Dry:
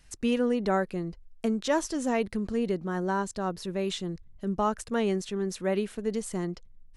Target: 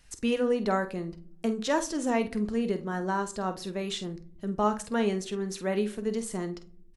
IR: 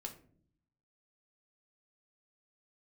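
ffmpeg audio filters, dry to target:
-filter_complex "[0:a]asplit=2[a][b];[b]adelay=48,volume=-11.5dB[c];[a][c]amix=inputs=2:normalize=0,asplit=2[d][e];[1:a]atrim=start_sample=2205,lowshelf=f=250:g=-9[f];[e][f]afir=irnorm=-1:irlink=0,volume=1dB[g];[d][g]amix=inputs=2:normalize=0,volume=-4dB"

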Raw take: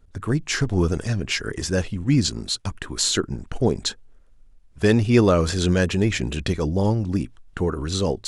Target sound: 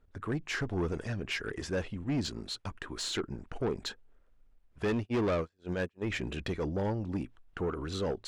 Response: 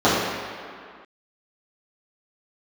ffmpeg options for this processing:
-filter_complex "[0:a]asplit=3[a][b][c];[a]afade=t=out:st=4.84:d=0.02[d];[b]agate=range=-44dB:threshold=-17dB:ratio=16:detection=peak,afade=t=in:st=4.84:d=0.02,afade=t=out:st=6.06:d=0.02[e];[c]afade=t=in:st=6.06:d=0.02[f];[d][e][f]amix=inputs=3:normalize=0,bass=f=250:g=-6,treble=f=4k:g=-12,asoftclip=type=tanh:threshold=-20dB,volume=-5.5dB"

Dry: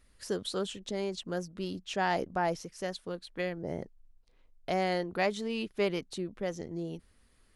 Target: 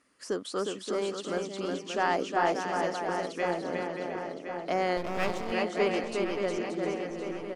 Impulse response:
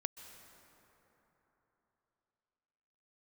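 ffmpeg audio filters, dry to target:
-filter_complex "[0:a]highpass=250,equalizer=f=280:t=q:w=4:g=7,equalizer=f=1.2k:t=q:w=4:g=6,equalizer=f=3.8k:t=q:w=4:g=-8,lowpass=f=9.4k:w=0.5412,lowpass=f=9.4k:w=1.3066,asplit=2[a][b];[b]aecho=0:1:360|576|705.6|783.4|830:0.631|0.398|0.251|0.158|0.1[c];[a][c]amix=inputs=2:normalize=0,asettb=1/sr,asplit=3[d][e][f];[d]atrim=end=4.974[g];[e]atrim=start=4.97:end=5.52,asetpts=PTS-STARTPTS,afade=t=in:d=0.004:c=qsin,afade=t=out:st=0.546:d=0.004:c=qsin,aeval=exprs='max(val(0),0)':c=same[h];[f]atrim=start=5.516[i];[g][h]acrossfade=d=0.004:c1=hsin:c2=qsin[j];[j][i]acrossfade=d=0.004:c1=qsin:c2=hsin,aeval=exprs='0.266*(cos(1*acos(clip(val(0)/0.266,-1,1)))-cos(1*PI/2))+0.00376*(cos(4*acos(clip(val(0)/0.266,-1,1)))-cos(4*PI/2))':c=same,asplit=2[k][l];[l]adelay=1064,lowpass=f=3.5k:p=1,volume=-8dB,asplit=2[m][n];[n]adelay=1064,lowpass=f=3.5k:p=1,volume=0.52,asplit=2[o][p];[p]adelay=1064,lowpass=f=3.5k:p=1,volume=0.52,asplit=2[q][r];[r]adelay=1064,lowpass=f=3.5k:p=1,volume=0.52,asplit=2[s][t];[t]adelay=1064,lowpass=f=3.5k:p=1,volume=0.52,asplit=2[u][v];[v]adelay=1064,lowpass=f=3.5k:p=1,volume=0.52[w];[m][o][q][s][u][w]amix=inputs=6:normalize=0[x];[k][x]amix=inputs=2:normalize=0,volume=1.5dB"

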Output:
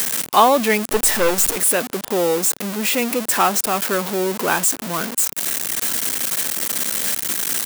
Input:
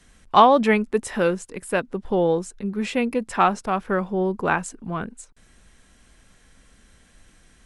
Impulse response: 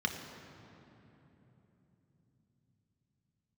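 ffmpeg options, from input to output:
-filter_complex "[0:a]aeval=exprs='val(0)+0.5*0.0944*sgn(val(0))':c=same,highpass=230,aemphasis=mode=production:type=50kf,asettb=1/sr,asplit=3[a][b][c];[a]atrim=end=0.864[d];[b]atrim=start=0.86:end=1.56,asetpts=PTS-STARTPTS,afade=t=in:d=0.004:c=qsin,afade=t=out:st=0.696:d=0.004:c=qsin,aeval=exprs='0.631*(cos(1*acos(clip(val(0)/0.631,-1,1)))-cos(1*PI/2))+0.0708*(cos(5*acos(clip(val(0)/0.631,-1,1)))-cos(5*PI/2))+0.0631*(cos(6*acos(clip(val(0)/0.631,-1,1)))-cos(6*PI/2))+0.0562*(cos(7*acos(clip(val(0)/0.631,-1,1)))-cos(7*PI/2))+0.141*(cos(8*acos(clip(val(0)/0.631,-1,1)))-cos(8*PI/2))':c=same[e];[c]atrim=start=1.556[f];[d][e]acrossfade=d=0.004:c1=hsin:c2=qsin[g];[g][f]acrossfade=d=0.004:c1=qsin:c2=hsin,volume=-1dB"

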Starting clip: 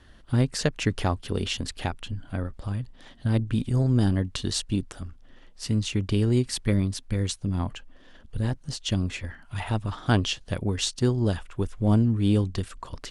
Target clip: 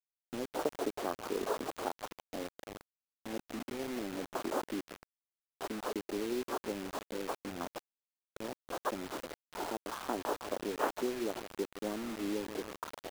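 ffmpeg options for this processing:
-af "aecho=1:1:159|318|477|636|795|954:0.141|0.0848|0.0509|0.0305|0.0183|0.011,acrusher=samples=19:mix=1:aa=0.000001,deesser=0.75,aresample=8000,aresample=44100,acompressor=threshold=-24dB:ratio=8,highpass=f=310:w=0.5412,highpass=f=310:w=1.3066,afwtdn=0.01,aemphasis=mode=production:type=75kf,acrusher=bits=6:mix=0:aa=0.000001"

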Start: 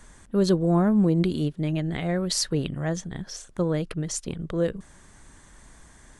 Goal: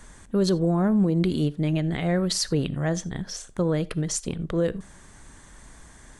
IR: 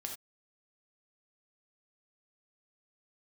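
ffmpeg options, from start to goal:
-filter_complex "[0:a]alimiter=limit=-17dB:level=0:latency=1:release=78,asplit=2[a][b];[1:a]atrim=start_sample=2205[c];[b][c]afir=irnorm=-1:irlink=0,volume=-13dB[d];[a][d]amix=inputs=2:normalize=0,volume=1.5dB"

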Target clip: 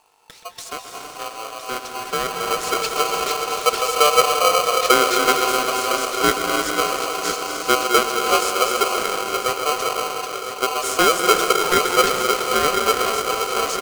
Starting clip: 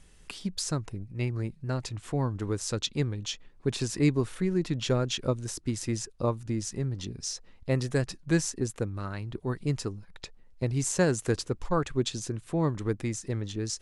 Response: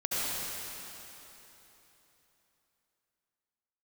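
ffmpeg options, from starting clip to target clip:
-filter_complex "[0:a]asplit=2[a][b];[b]adelay=303.2,volume=-12dB,highshelf=f=4k:g=-6.82[c];[a][c]amix=inputs=2:normalize=0,asplit=2[d][e];[1:a]atrim=start_sample=2205,adelay=127[f];[e][f]afir=irnorm=-1:irlink=0,volume=-11dB[g];[d][g]amix=inputs=2:normalize=0,aeval=exprs='val(0)+0.00178*(sin(2*PI*50*n/s)+sin(2*PI*2*50*n/s)/2+sin(2*PI*3*50*n/s)/3+sin(2*PI*4*50*n/s)/4+sin(2*PI*5*50*n/s)/5)':c=same,lowshelf=f=77:g=-9,asplit=2[h][i];[i]aecho=0:1:1010|2020|3030|4040|5050|6060:0.316|0.164|0.0855|0.0445|0.0231|0.012[j];[h][j]amix=inputs=2:normalize=0,dynaudnorm=f=220:g=21:m=9dB,superequalizer=7b=2.82:8b=1.58,aeval=exprs='val(0)*sgn(sin(2*PI*890*n/s))':c=same,volume=-3dB"

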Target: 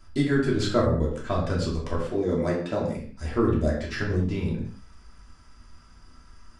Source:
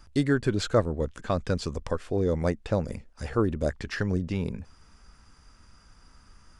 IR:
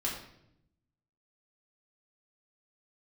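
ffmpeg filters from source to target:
-filter_complex "[0:a]asettb=1/sr,asplit=3[a][b][c];[a]atrim=end=2.014[d];[b]atrim=start=2.01:end=2.97,asetpts=PTS-STARTPTS,afade=t=in:d=0.004:c=qsin,afade=t=out:st=0.956:d=0.004:c=qsin,highpass=140[e];[c]atrim=start=2.966[f];[d][e]acrossfade=d=0.004:c1=hsin:c2=qsin[g];[g][f]acrossfade=d=0.004:c1=qsin:c2=hsin[h];[1:a]atrim=start_sample=2205,afade=t=out:st=0.26:d=0.01,atrim=end_sample=11907[i];[h][i]afir=irnorm=-1:irlink=0,volume=-2.5dB"

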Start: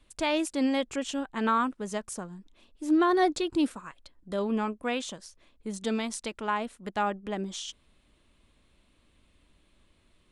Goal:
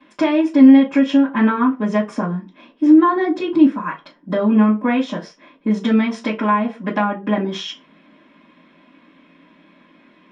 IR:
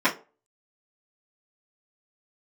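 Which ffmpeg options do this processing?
-filter_complex "[0:a]lowpass=4k,acrossover=split=220[a][b];[b]acompressor=threshold=-35dB:ratio=10[c];[a][c]amix=inputs=2:normalize=0[d];[1:a]atrim=start_sample=2205,afade=t=out:st=0.21:d=0.01,atrim=end_sample=9702[e];[d][e]afir=irnorm=-1:irlink=0,volume=1.5dB"

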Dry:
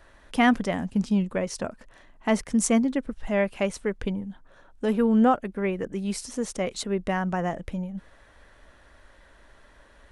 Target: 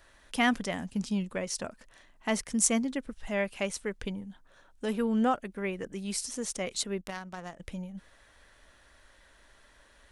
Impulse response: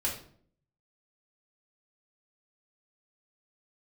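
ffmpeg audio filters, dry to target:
-filter_complex "[0:a]highshelf=f=2.2k:g=10.5,asettb=1/sr,asplit=3[a][b][c];[a]atrim=end=7.014[d];[b]atrim=start=7.01:end=7.6,asetpts=PTS-STARTPTS,afade=t=in:d=0.004:c=qsin,afade=t=out:st=0.586:d=0.004:c=qsin,aeval=exprs='0.251*(cos(1*acos(clip(val(0)/0.251,-1,1)))-cos(1*PI/2))+0.0631*(cos(3*acos(clip(val(0)/0.251,-1,1)))-cos(3*PI/2))':c=same[e];[c]atrim=start=7.596[f];[d][e]acrossfade=d=0.004:c1=hsin:c2=qsin[g];[g][f]acrossfade=d=0.004:c1=qsin:c2=hsin,volume=-7.5dB"

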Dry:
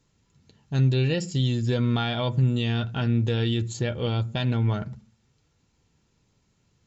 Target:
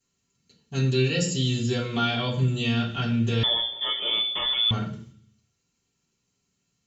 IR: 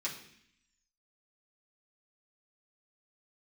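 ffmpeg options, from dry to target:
-filter_complex "[0:a]crystalizer=i=2:c=0,agate=range=-9dB:threshold=-53dB:ratio=16:detection=peak[a];[1:a]atrim=start_sample=2205,asetrate=52920,aresample=44100[b];[a][b]afir=irnorm=-1:irlink=0,asettb=1/sr,asplit=3[c][d][e];[c]atrim=end=3.434[f];[d]atrim=start=3.43:end=4.71,asetpts=PTS-STARTPTS,afade=t=in:d=0.004:c=qsin,afade=t=out:st=1.276:d=0.004:c=qsin,lowpass=f=3.1k:t=q:w=0.5098,lowpass=f=3.1k:t=q:w=0.6013,lowpass=f=3.1k:t=q:w=0.9,lowpass=f=3.1k:t=q:w=2.563,afreqshift=-3600[g];[e]atrim=start=4.706[h];[f][g]acrossfade=d=0.004:c1=hsin:c2=qsin[i];[i][h]acrossfade=d=0.004:c1=qsin:c2=hsin"

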